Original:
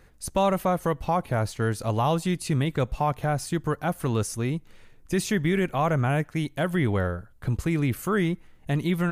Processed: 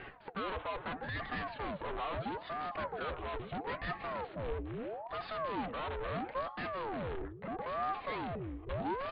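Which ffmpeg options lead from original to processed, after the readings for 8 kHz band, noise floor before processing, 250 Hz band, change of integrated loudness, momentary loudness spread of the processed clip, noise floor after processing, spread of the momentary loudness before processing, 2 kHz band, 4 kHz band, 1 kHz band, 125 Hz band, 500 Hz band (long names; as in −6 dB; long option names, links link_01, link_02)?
below −40 dB, −53 dBFS, −17.0 dB, −13.0 dB, 4 LU, −50 dBFS, 6 LU, −9.0 dB, −10.0 dB, −8.5 dB, −20.0 dB, −11.5 dB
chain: -filter_complex "[0:a]asubboost=boost=7:cutoff=140,afreqshift=100,equalizer=frequency=910:width=1.7:gain=13,areverse,acompressor=threshold=-26dB:ratio=5,areverse,asplit=2[link_01][link_02];[link_02]highpass=frequency=720:poles=1,volume=25dB,asoftclip=type=tanh:threshold=-16dB[link_03];[link_01][link_03]amix=inputs=2:normalize=0,lowpass=frequency=1100:poles=1,volume=-6dB,aresample=8000,asoftclip=type=tanh:threshold=-30dB,aresample=44100,flanger=delay=1.7:depth=2.7:regen=70:speed=1.2:shape=sinusoidal,aeval=exprs='val(0)*sin(2*PI*580*n/s+580*0.7/0.76*sin(2*PI*0.76*n/s))':channel_layout=same,volume=1dB"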